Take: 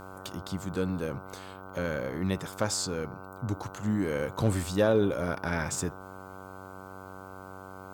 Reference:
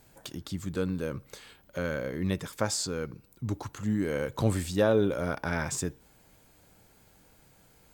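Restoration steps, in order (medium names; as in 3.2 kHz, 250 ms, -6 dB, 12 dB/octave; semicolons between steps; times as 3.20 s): clip repair -15 dBFS; de-hum 94.9 Hz, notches 16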